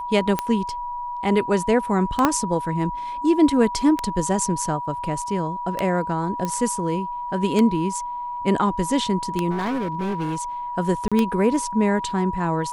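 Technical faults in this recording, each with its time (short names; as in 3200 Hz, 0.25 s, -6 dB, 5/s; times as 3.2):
tick 33 1/3 rpm -8 dBFS
tone 970 Hz -27 dBFS
2.25 pop -3 dBFS
6.45 pop -13 dBFS
9.5–10.42 clipped -21.5 dBFS
11.08–11.12 gap 36 ms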